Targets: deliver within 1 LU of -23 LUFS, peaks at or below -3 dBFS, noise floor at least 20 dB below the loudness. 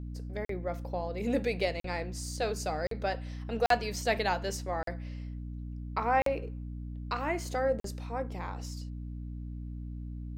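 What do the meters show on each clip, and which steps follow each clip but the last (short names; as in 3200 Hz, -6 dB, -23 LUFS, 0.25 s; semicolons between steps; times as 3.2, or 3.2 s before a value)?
dropouts 7; longest dropout 43 ms; hum 60 Hz; harmonics up to 300 Hz; hum level -37 dBFS; loudness -34.0 LUFS; peak -12.5 dBFS; loudness target -23.0 LUFS
-> interpolate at 0.45/1.8/2.87/3.66/4.83/6.22/7.8, 43 ms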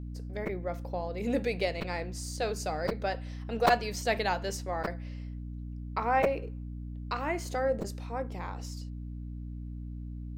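dropouts 0; hum 60 Hz; harmonics up to 300 Hz; hum level -37 dBFS
-> notches 60/120/180/240/300 Hz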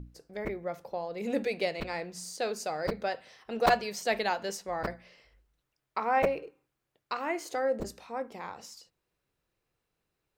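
hum none; loudness -32.5 LUFS; peak -9.0 dBFS; loudness target -23.0 LUFS
-> gain +9.5 dB; limiter -3 dBFS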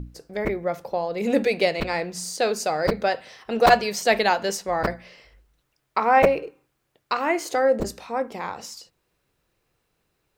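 loudness -23.5 LUFS; peak -3.0 dBFS; noise floor -74 dBFS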